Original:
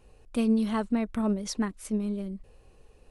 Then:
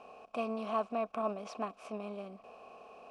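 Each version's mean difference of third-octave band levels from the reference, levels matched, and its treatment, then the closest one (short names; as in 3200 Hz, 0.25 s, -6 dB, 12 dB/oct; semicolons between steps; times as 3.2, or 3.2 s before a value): 7.0 dB: per-bin compression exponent 0.6; vowel filter a; gain +6.5 dB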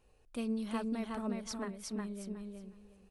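5.0 dB: low shelf 470 Hz -4.5 dB; on a send: feedback echo 0.364 s, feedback 21%, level -3 dB; on the sum: gain -8 dB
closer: second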